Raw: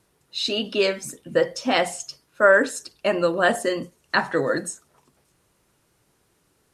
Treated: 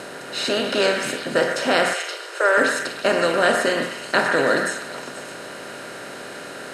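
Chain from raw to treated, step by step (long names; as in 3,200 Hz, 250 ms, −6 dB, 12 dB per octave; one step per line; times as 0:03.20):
compressor on every frequency bin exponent 0.4
0:01.93–0:02.58: Chebyshev high-pass with heavy ripple 330 Hz, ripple 3 dB
on a send: echo through a band-pass that steps 121 ms, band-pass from 1,600 Hz, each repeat 0.7 octaves, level −3.5 dB
on the sum: level −4 dB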